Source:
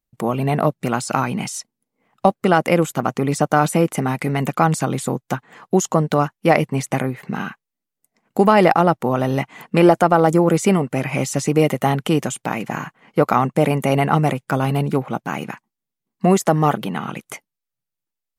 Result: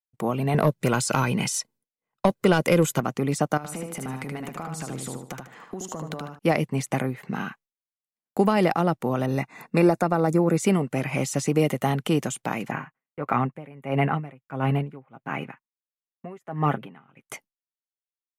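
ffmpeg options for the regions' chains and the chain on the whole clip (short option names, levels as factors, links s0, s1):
-filter_complex "[0:a]asettb=1/sr,asplit=3[s0][s1][s2];[s0]atrim=end=0.544[s3];[s1]atrim=start=0.54:end=3,asetpts=PTS-STARTPTS,afade=t=in:d=0.004:c=qsin,afade=t=out:st=2.456:d=0.004:c=qsin,aecho=1:1:2:0.35,atrim=end_sample=108486,acontrast=44[s4];[s2]atrim=start=2.996[s5];[s3][s4]acrossfade=d=0.004:c1=hsin:c2=qsin[s6];[s6][s5]acrossfade=d=0.004:c1=qsin:c2=hsin,asettb=1/sr,asplit=3[s7][s8][s9];[s7]atrim=end=3.574[s10];[s8]atrim=start=3.57:end=6.39,asetpts=PTS-STARTPTS,afade=t=in:d=0.004:c=qsin,afade=t=out:st=2.816:d=0.004:c=qsin,acompressor=threshold=0.0501:ratio=8:attack=3.2:release=140:knee=1:detection=peak,aecho=1:1:76|152|228|304:0.631|0.177|0.0495|0.0139,atrim=end_sample=124362[s11];[s9]atrim=start=6.386[s12];[s10][s11]acrossfade=d=0.004:c1=hsin:c2=qsin[s13];[s13][s12]acrossfade=d=0.004:c1=qsin:c2=hsin,asettb=1/sr,asplit=3[s14][s15][s16];[s14]atrim=end=9.264[s17];[s15]atrim=start=9.26:end=10.6,asetpts=PTS-STARTPTS,afade=t=in:d=0.004:c=qsin,afade=t=out:st=1.336:d=0.004:c=qsin,asuperstop=centerf=3100:order=20:qfactor=5.3,adynamicequalizer=threshold=0.0282:dfrequency=3100:dqfactor=0.7:tfrequency=3100:tqfactor=0.7:attack=5:release=100:ratio=0.375:range=2.5:mode=cutabove:tftype=highshelf[s18];[s16]atrim=start=10.596[s19];[s17][s18]acrossfade=d=0.004:c1=hsin:c2=qsin[s20];[s20][s19]acrossfade=d=0.004:c1=qsin:c2=hsin,asettb=1/sr,asplit=3[s21][s22][s23];[s21]atrim=end=12.714[s24];[s22]atrim=start=12.71:end=17.26,asetpts=PTS-STARTPTS,afade=t=in:d=0.004:c=qsin,afade=t=out:st=4.546:d=0.004:c=qsin,highshelf=f=3400:t=q:w=1.5:g=-12,aecho=1:1:7.5:0.4,atrim=end_sample=200655,aeval=exprs='val(0)*pow(10,-24*(0.5-0.5*cos(2*PI*1.5*n/s))/20)':c=same[s25];[s23]atrim=start=17.256[s26];[s24][s25]acrossfade=d=0.004:c1=hsin:c2=qsin[s27];[s27][s26]acrossfade=d=0.004:c1=qsin:c2=hsin,agate=range=0.0224:threshold=0.00708:ratio=3:detection=peak,adynamicequalizer=threshold=0.0501:dfrequency=870:dqfactor=0.85:tfrequency=870:tqfactor=0.85:attack=5:release=100:ratio=0.375:range=2:mode=cutabove:tftype=bell,acrossover=split=330|3000[s28][s29][s30];[s29]acompressor=threshold=0.178:ratio=6[s31];[s28][s31][s30]amix=inputs=3:normalize=0,volume=0.596"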